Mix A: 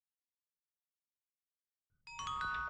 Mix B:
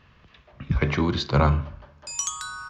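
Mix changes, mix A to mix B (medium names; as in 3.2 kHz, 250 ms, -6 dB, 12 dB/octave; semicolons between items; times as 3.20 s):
speech: entry -2.20 s; background: remove distance through air 450 m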